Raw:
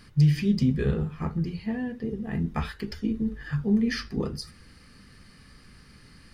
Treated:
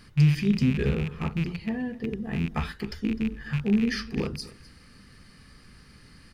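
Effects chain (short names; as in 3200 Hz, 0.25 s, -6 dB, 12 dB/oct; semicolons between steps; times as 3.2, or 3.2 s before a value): rattling part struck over -29 dBFS, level -26 dBFS; echo 0.255 s -19.5 dB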